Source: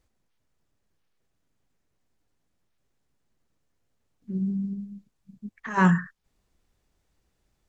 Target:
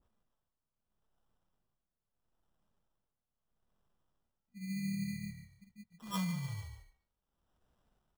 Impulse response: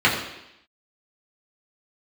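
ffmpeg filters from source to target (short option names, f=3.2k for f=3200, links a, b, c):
-filter_complex "[0:a]firequalizer=gain_entry='entry(130,0);entry(230,3);entry(340,-28);entry(710,-26);entry(1000,-3);entry(1900,-30);entry(2800,8);entry(8900,4)':delay=0.05:min_phase=1,acrusher=samples=20:mix=1:aa=0.000001,atempo=0.94,asplit=5[a][b][c][d][e];[b]adelay=144,afreqshift=-35,volume=-11dB[f];[c]adelay=288,afreqshift=-70,volume=-18.7dB[g];[d]adelay=432,afreqshift=-105,volume=-26.5dB[h];[e]adelay=576,afreqshift=-140,volume=-34.2dB[i];[a][f][g][h][i]amix=inputs=5:normalize=0,tremolo=f=0.77:d=0.79,acompressor=threshold=-30dB:ratio=6,asplit=2[j][k];[1:a]atrim=start_sample=2205,atrim=end_sample=3528,adelay=137[l];[k][l]afir=irnorm=-1:irlink=0,volume=-37.5dB[m];[j][m]amix=inputs=2:normalize=0,adynamicequalizer=threshold=0.00112:dfrequency=1900:dqfactor=0.7:tfrequency=1900:tqfactor=0.7:attack=5:release=100:ratio=0.375:range=2:mode=boostabove:tftype=highshelf,volume=-4.5dB"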